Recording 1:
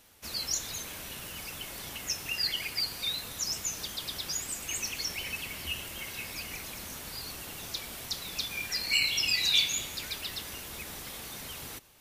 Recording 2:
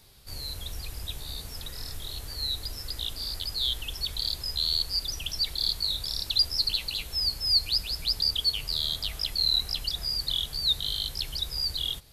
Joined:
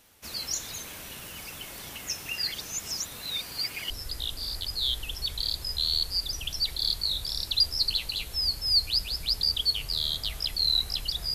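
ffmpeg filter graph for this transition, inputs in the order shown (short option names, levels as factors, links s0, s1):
-filter_complex "[0:a]apad=whole_dur=11.34,atrim=end=11.34,asplit=2[s0][s1];[s0]atrim=end=2.542[s2];[s1]atrim=start=2.538:end=3.902,asetpts=PTS-STARTPTS,areverse[s3];[1:a]atrim=start=2.688:end=10.13[s4];[s2][s3]acrossfade=d=0.004:c1=hsin:c2=hsin[s5];[s5][s4]acrossfade=d=0.004:c1=hsin:c2=hsin"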